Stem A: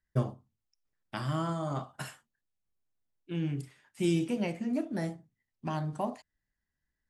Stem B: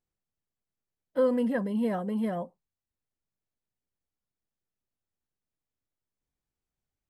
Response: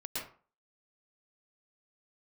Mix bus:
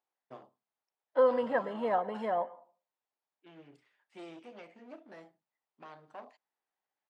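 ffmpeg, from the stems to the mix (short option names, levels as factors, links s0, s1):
-filter_complex "[0:a]aeval=exprs='clip(val(0),-1,0.0224)':c=same,adelay=150,volume=0.316[s0];[1:a]equalizer=f=860:w=1.7:g=9.5,volume=0.944,asplit=2[s1][s2];[s2]volume=0.119[s3];[2:a]atrim=start_sample=2205[s4];[s3][s4]afir=irnorm=-1:irlink=0[s5];[s0][s1][s5]amix=inputs=3:normalize=0,highpass=460,lowpass=3700"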